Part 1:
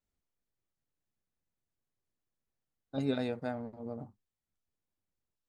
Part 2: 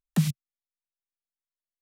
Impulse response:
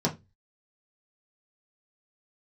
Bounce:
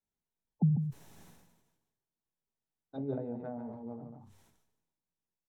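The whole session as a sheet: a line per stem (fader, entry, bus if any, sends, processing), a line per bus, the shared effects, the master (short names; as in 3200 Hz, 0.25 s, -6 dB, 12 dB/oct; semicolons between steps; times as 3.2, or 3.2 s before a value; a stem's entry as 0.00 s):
-9.0 dB, 0.00 s, send -16 dB, echo send -7 dB, treble ducked by the level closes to 620 Hz, closed at -30.5 dBFS
-2.5 dB, 0.45 s, no send, echo send -21 dB, elliptic low-pass 920 Hz; spectral gate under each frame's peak -15 dB strong; comb 2.4 ms, depth 30%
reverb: on, RT60 0.20 s, pre-delay 3 ms
echo: echo 0.147 s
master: bell 890 Hz +7 dB 0.48 oct; sustainer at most 51 dB/s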